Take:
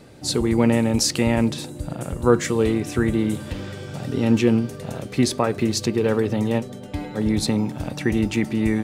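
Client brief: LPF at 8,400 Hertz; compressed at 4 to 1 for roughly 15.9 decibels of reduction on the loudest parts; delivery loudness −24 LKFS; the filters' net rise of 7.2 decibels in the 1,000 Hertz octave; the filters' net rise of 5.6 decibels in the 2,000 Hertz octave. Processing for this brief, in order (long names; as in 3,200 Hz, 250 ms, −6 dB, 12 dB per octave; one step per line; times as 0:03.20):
low-pass filter 8,400 Hz
parametric band 1,000 Hz +8 dB
parametric band 2,000 Hz +4.5 dB
downward compressor 4 to 1, threshold −27 dBFS
level +6.5 dB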